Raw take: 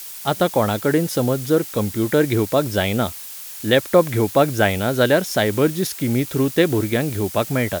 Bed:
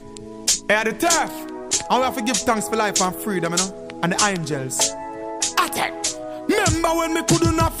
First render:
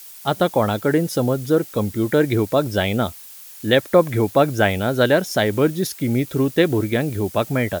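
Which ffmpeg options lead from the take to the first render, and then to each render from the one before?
ffmpeg -i in.wav -af "afftdn=noise_reduction=7:noise_floor=-35" out.wav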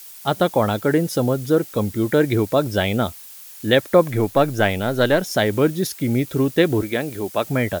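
ffmpeg -i in.wav -filter_complex "[0:a]asettb=1/sr,asplit=3[link_01][link_02][link_03];[link_01]atrim=end=4.114[link_04];[link_02]atrim=start=4.11:end=5.22,asetpts=PTS-STARTPTS,afade=type=in:duration=0.004:curve=qsin,afade=type=out:start_time=1.106:duration=0.004:curve=qsin,aeval=exprs='if(lt(val(0),0),0.708*val(0),val(0))':channel_layout=same[link_05];[link_03]atrim=start=5.216[link_06];[link_04][link_05]acrossfade=duration=0.004:curve1=hsin:curve2=qsin[link_07];[link_07][link_06]acrossfade=duration=0.004:curve1=qsin:curve2=hsin,asettb=1/sr,asplit=3[link_08][link_09][link_10];[link_08]atrim=end=6.824[link_11];[link_09]atrim=start=6.82:end=7.45,asetpts=PTS-STARTPTS,afade=type=in:duration=0.004:curve=qsin,afade=type=out:start_time=0.626:duration=0.004:curve=qsin,highpass=frequency=330:poles=1[link_12];[link_10]atrim=start=7.446[link_13];[link_11][link_12]acrossfade=duration=0.004:curve1=hsin:curve2=qsin[link_14];[link_14][link_13]acrossfade=duration=0.004:curve1=qsin:curve2=hsin" out.wav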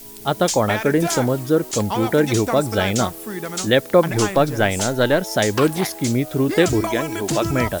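ffmpeg -i in.wav -i bed.wav -filter_complex "[1:a]volume=-6.5dB[link_01];[0:a][link_01]amix=inputs=2:normalize=0" out.wav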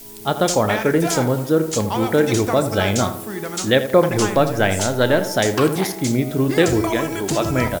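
ffmpeg -i in.wav -filter_complex "[0:a]asplit=2[link_01][link_02];[link_02]adelay=31,volume=-14dB[link_03];[link_01][link_03]amix=inputs=2:normalize=0,asplit=2[link_04][link_05];[link_05]adelay=82,lowpass=frequency=1900:poles=1,volume=-10dB,asplit=2[link_06][link_07];[link_07]adelay=82,lowpass=frequency=1900:poles=1,volume=0.47,asplit=2[link_08][link_09];[link_09]adelay=82,lowpass=frequency=1900:poles=1,volume=0.47,asplit=2[link_10][link_11];[link_11]adelay=82,lowpass=frequency=1900:poles=1,volume=0.47,asplit=2[link_12][link_13];[link_13]adelay=82,lowpass=frequency=1900:poles=1,volume=0.47[link_14];[link_04][link_06][link_08][link_10][link_12][link_14]amix=inputs=6:normalize=0" out.wav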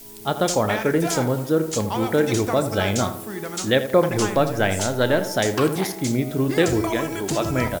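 ffmpeg -i in.wav -af "volume=-3dB" out.wav

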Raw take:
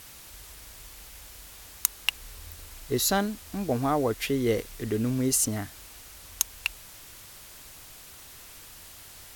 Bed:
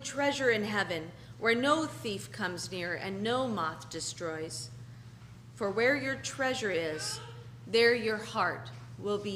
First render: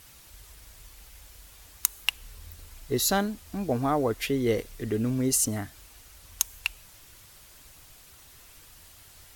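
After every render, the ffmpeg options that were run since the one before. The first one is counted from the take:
ffmpeg -i in.wav -af "afftdn=noise_reduction=6:noise_floor=-48" out.wav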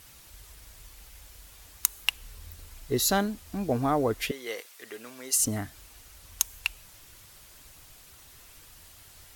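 ffmpeg -i in.wav -filter_complex "[0:a]asettb=1/sr,asplit=3[link_01][link_02][link_03];[link_01]atrim=end=4.314[link_04];[link_02]atrim=start=4.31:end=5.4,asetpts=PTS-STARTPTS,afade=type=in:duration=0.004:curve=qsin,afade=type=out:start_time=1.086:duration=0.004:curve=qsin,highpass=860[link_05];[link_03]atrim=start=5.396[link_06];[link_04][link_05]acrossfade=duration=0.004:curve1=hsin:curve2=qsin[link_07];[link_07][link_06]acrossfade=duration=0.004:curve1=qsin:curve2=hsin" out.wav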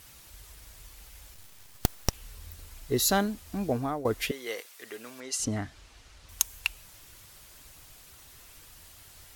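ffmpeg -i in.wav -filter_complex "[0:a]asettb=1/sr,asplit=3[link_01][link_02][link_03];[link_01]atrim=end=1.344[link_04];[link_02]atrim=start=1.34:end=2.13,asetpts=PTS-STARTPTS,afade=type=in:duration=0.004:curve=qsin,afade=type=out:start_time=0.786:duration=0.004:curve=qsin,aeval=exprs='abs(val(0))':channel_layout=same[link_05];[link_03]atrim=start=2.126[link_06];[link_04][link_05]acrossfade=duration=0.004:curve1=hsin:curve2=qsin[link_07];[link_07][link_06]acrossfade=duration=0.004:curve1=qsin:curve2=hsin,asettb=1/sr,asplit=3[link_08][link_09][link_10];[link_08]atrim=end=5.204[link_11];[link_09]atrim=start=5.2:end=6.29,asetpts=PTS-STARTPTS,afade=type=in:duration=0.004:curve=qsin,afade=type=out:start_time=1.086:duration=0.004:curve=qsin,lowpass=5600[link_12];[link_10]atrim=start=6.286[link_13];[link_11][link_12]acrossfade=duration=0.004:curve1=hsin:curve2=qsin[link_14];[link_14][link_13]acrossfade=duration=0.004:curve1=qsin:curve2=hsin,asplit=2[link_15][link_16];[link_15]atrim=end=4.05,asetpts=PTS-STARTPTS,afade=type=out:start_time=3.65:duration=0.4:silence=0.199526[link_17];[link_16]atrim=start=4.05,asetpts=PTS-STARTPTS,afade=type=in:duration=0.004:curve=hsin:silence=0.199526[link_18];[link_17][link_18]concat=n=2:v=0:a=1" out.wav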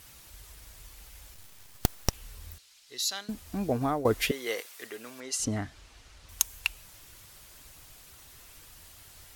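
ffmpeg -i in.wav -filter_complex "[0:a]asettb=1/sr,asplit=3[link_01][link_02][link_03];[link_01]atrim=end=2.584[link_04];[link_02]atrim=start=2.58:end=3.29,asetpts=PTS-STARTPTS,afade=type=in:duration=0.004:curve=qsin,afade=type=out:start_time=0.706:duration=0.004:curve=qsin,bandpass=frequency=4400:width_type=q:width=1.2[link_05];[link_03]atrim=start=3.286[link_06];[link_04][link_05]acrossfade=duration=0.004:curve1=hsin:curve2=qsin[link_07];[link_07][link_06]acrossfade=duration=0.004:curve1=qsin:curve2=hsin,asplit=3[link_08][link_09][link_10];[link_08]atrim=end=3.812[link_11];[link_09]atrim=start=3.808:end=4.872,asetpts=PTS-STARTPTS,volume=3dB[link_12];[link_10]atrim=start=4.868[link_13];[link_11][link_12]acrossfade=duration=0.004:curve1=hsin:curve2=hsin[link_14];[link_14][link_13]acrossfade=duration=0.004:curve1=hsin:curve2=hsin" out.wav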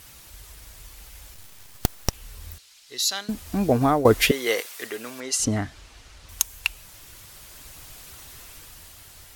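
ffmpeg -i in.wav -filter_complex "[0:a]asplit=2[link_01][link_02];[link_02]alimiter=limit=-12.5dB:level=0:latency=1:release=418,volume=-2.5dB[link_03];[link_01][link_03]amix=inputs=2:normalize=0,dynaudnorm=framelen=270:gausssize=9:maxgain=5.5dB" out.wav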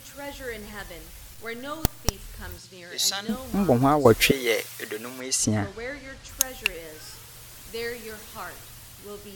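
ffmpeg -i in.wav -i bed.wav -filter_complex "[1:a]volume=-8dB[link_01];[0:a][link_01]amix=inputs=2:normalize=0" out.wav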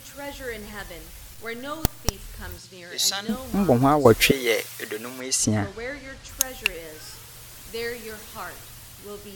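ffmpeg -i in.wav -af "volume=1.5dB,alimiter=limit=-1dB:level=0:latency=1" out.wav

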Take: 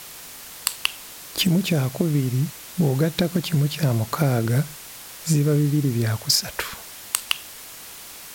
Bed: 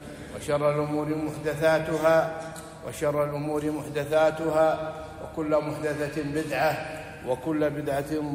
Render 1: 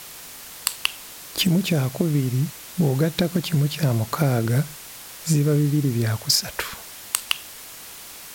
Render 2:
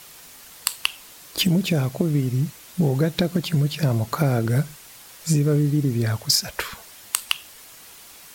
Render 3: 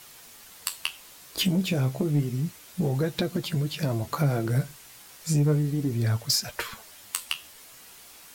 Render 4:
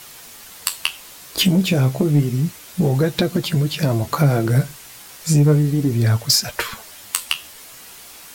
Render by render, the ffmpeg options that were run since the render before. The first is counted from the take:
ffmpeg -i in.wav -af anull out.wav
ffmpeg -i in.wav -af "afftdn=noise_reduction=6:noise_floor=-40" out.wav
ffmpeg -i in.wav -af "flanger=delay=8.3:depth=7.5:regen=43:speed=0.31:shape=sinusoidal,asoftclip=type=tanh:threshold=-13.5dB" out.wav
ffmpeg -i in.wav -af "volume=8.5dB" out.wav

